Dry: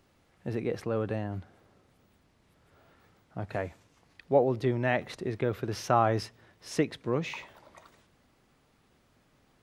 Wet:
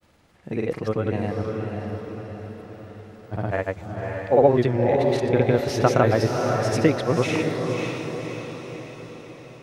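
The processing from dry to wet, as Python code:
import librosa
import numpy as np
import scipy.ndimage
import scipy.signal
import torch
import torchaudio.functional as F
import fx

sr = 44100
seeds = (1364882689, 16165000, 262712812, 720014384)

y = fx.granulator(x, sr, seeds[0], grain_ms=100.0, per_s=20.0, spray_ms=100.0, spread_st=0)
y = fx.echo_diffused(y, sr, ms=560, feedback_pct=53, wet_db=-3.5)
y = F.gain(torch.from_numpy(y), 8.5).numpy()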